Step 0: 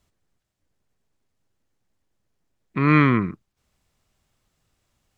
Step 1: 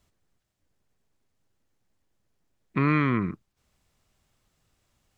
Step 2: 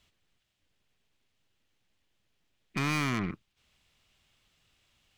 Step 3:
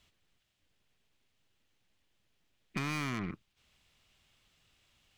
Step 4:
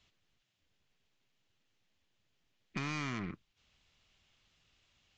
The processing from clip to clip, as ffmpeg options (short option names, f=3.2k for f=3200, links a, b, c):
-af "acompressor=threshold=-19dB:ratio=6"
-af "equalizer=f=3k:w=0.94:g=13,aeval=exprs='(tanh(17.8*val(0)+0.45)-tanh(0.45))/17.8':c=same,volume=-1.5dB"
-af "acompressor=threshold=-32dB:ratio=6"
-af "volume=-2.5dB" -ar 16000 -c:a libvorbis -b:a 64k